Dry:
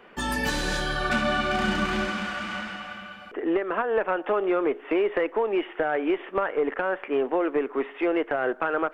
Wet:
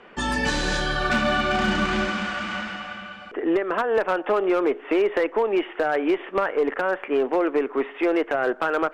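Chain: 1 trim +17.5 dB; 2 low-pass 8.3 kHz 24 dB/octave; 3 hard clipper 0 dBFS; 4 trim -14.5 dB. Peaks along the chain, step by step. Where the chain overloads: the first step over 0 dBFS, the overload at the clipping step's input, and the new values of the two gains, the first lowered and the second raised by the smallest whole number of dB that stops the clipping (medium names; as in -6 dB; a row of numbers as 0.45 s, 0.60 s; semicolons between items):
+5.5 dBFS, +5.5 dBFS, 0.0 dBFS, -14.5 dBFS; step 1, 5.5 dB; step 1 +11.5 dB, step 4 -8.5 dB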